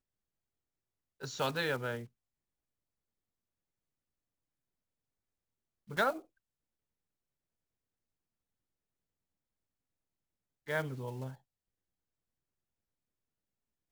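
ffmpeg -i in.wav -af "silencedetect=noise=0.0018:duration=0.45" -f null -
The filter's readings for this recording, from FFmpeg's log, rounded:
silence_start: 0.00
silence_end: 1.20 | silence_duration: 1.20
silence_start: 2.07
silence_end: 5.88 | silence_duration: 3.81
silence_start: 6.25
silence_end: 10.67 | silence_duration: 4.42
silence_start: 11.36
silence_end: 13.91 | silence_duration: 2.56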